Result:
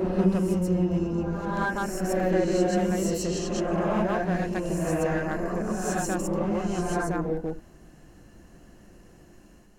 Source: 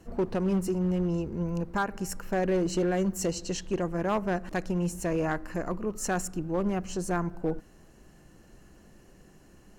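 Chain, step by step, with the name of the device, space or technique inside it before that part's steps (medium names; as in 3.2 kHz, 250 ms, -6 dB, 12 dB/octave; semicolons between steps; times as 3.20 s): reverse reverb (reverse; reverberation RT60 1.4 s, pre-delay 119 ms, DRR -4 dB; reverse); trim -2.5 dB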